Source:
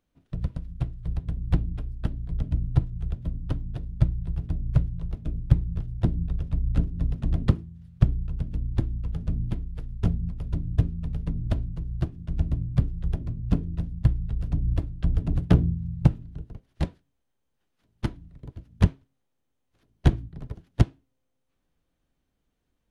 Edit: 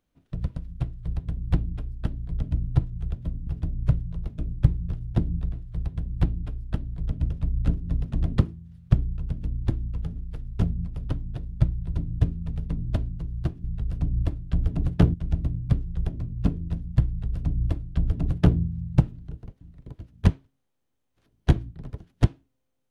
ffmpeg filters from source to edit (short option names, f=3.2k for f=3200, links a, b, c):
-filter_complex "[0:a]asplit=10[a][b][c][d][e][f][g][h][i][j];[a]atrim=end=3.472[k];[b]atrim=start=4.338:end=6.402[l];[c]atrim=start=0.838:end=2.612[m];[d]atrim=start=6.398:end=9.262[n];[e]atrim=start=9.598:end=10.512[o];[f]atrim=start=3.468:end=4.342[p];[g]atrim=start=10.508:end=12.212[q];[h]atrim=start=14.148:end=15.652[r];[i]atrim=start=12.208:end=16.682[s];[j]atrim=start=18.178[t];[k][l]acrossfade=d=0.004:c1=hsin:c2=hsin[u];[u][m]acrossfade=d=0.004:c1=hsin:c2=hsin[v];[v][n]acrossfade=d=0.004:c1=hsin:c2=hsin[w];[w][o]acrossfade=d=0.004:c1=hsin:c2=hsin[x];[x][p]acrossfade=d=0.004:c1=hsin:c2=hsin[y];[y][q]acrossfade=d=0.004:c1=hsin:c2=hsin[z];[z][r]acrossfade=d=0.004:c1=hsin:c2=hsin[aa];[aa][s]acrossfade=d=0.004:c1=hsin:c2=hsin[ab];[ab][t]acrossfade=d=0.004:c1=hsin:c2=hsin"